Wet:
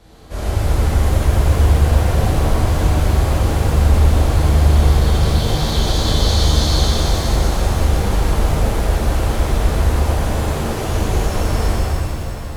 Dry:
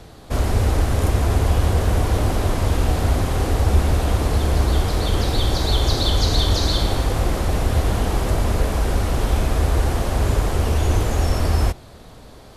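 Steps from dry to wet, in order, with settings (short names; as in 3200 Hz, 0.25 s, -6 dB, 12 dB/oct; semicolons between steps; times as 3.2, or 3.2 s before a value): 10.22–10.88 HPF 120 Hz 24 dB/oct; shimmer reverb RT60 3.3 s, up +7 st, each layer -8 dB, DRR -10 dB; gain -9 dB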